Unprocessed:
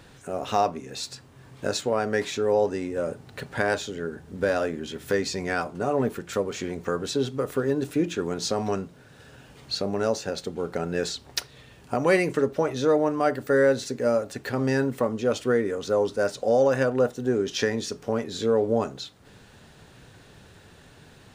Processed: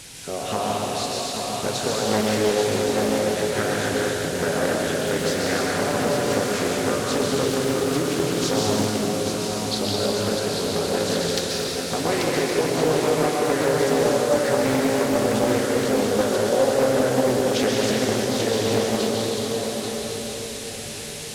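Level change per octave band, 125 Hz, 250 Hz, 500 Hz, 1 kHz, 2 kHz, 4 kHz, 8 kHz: +5.0 dB, +5.0 dB, +3.5 dB, +4.5 dB, +4.0 dB, +9.0 dB, +11.0 dB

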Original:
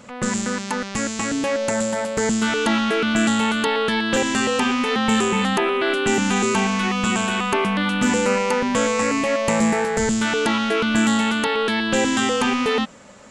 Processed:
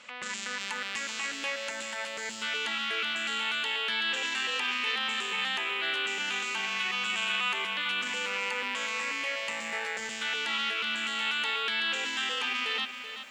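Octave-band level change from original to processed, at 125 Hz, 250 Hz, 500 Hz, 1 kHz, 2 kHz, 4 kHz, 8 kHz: under -25 dB, -27.5 dB, -20.5 dB, -13.0 dB, -5.5 dB, -3.0 dB, -13.5 dB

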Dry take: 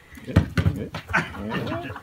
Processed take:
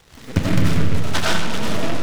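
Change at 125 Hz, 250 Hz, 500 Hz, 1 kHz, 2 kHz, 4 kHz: +3.0 dB, +4.5 dB, +5.0 dB, +3.5 dB, +1.0 dB, +11.5 dB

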